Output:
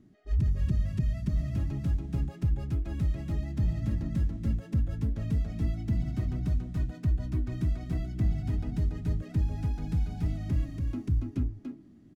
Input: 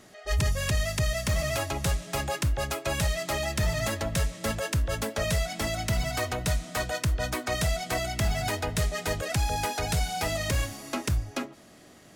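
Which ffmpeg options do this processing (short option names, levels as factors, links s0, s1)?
-filter_complex "[0:a]firequalizer=gain_entry='entry(300,0);entry(500,-21);entry(9000,-30);entry(14000,-28)':delay=0.05:min_phase=1,asplit=2[s0][s1];[s1]aecho=0:1:283:0.668[s2];[s0][s2]amix=inputs=2:normalize=0"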